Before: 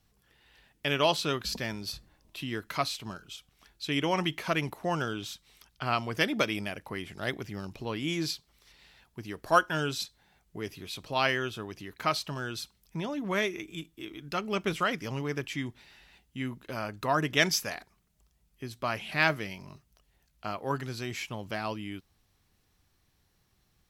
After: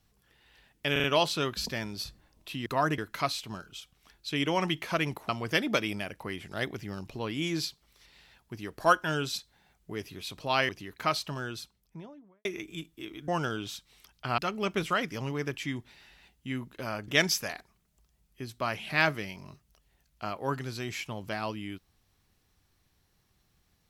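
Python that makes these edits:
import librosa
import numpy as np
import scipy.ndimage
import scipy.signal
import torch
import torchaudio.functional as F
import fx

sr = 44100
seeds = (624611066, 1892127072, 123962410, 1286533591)

y = fx.studio_fade_out(x, sr, start_s=12.3, length_s=1.15)
y = fx.edit(y, sr, fx.stutter(start_s=0.92, slice_s=0.04, count=4),
    fx.move(start_s=4.85, length_s=1.1, to_s=14.28),
    fx.cut(start_s=11.35, length_s=0.34),
    fx.move(start_s=16.98, length_s=0.32, to_s=2.54), tone=tone)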